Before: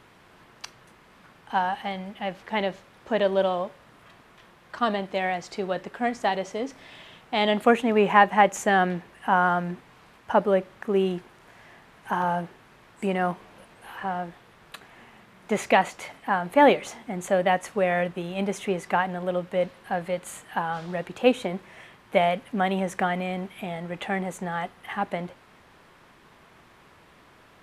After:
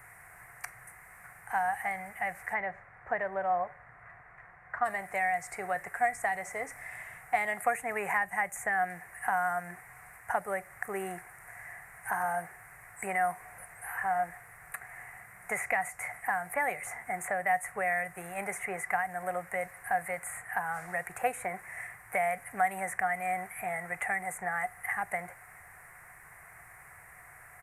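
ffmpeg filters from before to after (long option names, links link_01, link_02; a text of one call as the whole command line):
ffmpeg -i in.wav -filter_complex "[0:a]asplit=3[link_01][link_02][link_03];[link_01]afade=type=out:start_time=2.53:duration=0.02[link_04];[link_02]lowpass=1900,afade=type=in:start_time=2.53:duration=0.02,afade=type=out:start_time=4.84:duration=0.02[link_05];[link_03]afade=type=in:start_time=4.84:duration=0.02[link_06];[link_04][link_05][link_06]amix=inputs=3:normalize=0,firequalizer=gain_entry='entry(130,0);entry(230,-20);entry(450,-10);entry(2000,10);entry(3200,-25);entry(8700,14)':delay=0.05:min_phase=1,acrossover=split=230|3400[link_07][link_08][link_09];[link_07]acompressor=threshold=-53dB:ratio=4[link_10];[link_08]acompressor=threshold=-32dB:ratio=4[link_11];[link_09]acompressor=threshold=-43dB:ratio=4[link_12];[link_10][link_11][link_12]amix=inputs=3:normalize=0,equalizer=frequency=730:width=7.5:gain=14" out.wav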